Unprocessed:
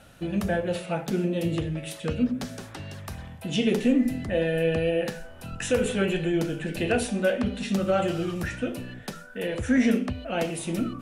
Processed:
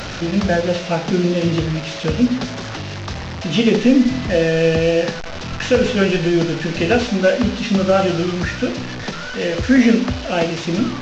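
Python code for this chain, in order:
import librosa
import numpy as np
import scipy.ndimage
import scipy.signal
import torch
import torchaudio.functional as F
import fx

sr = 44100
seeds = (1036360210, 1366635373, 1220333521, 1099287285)

y = fx.delta_mod(x, sr, bps=32000, step_db=-31.0)
y = F.gain(torch.from_numpy(y), 9.0).numpy()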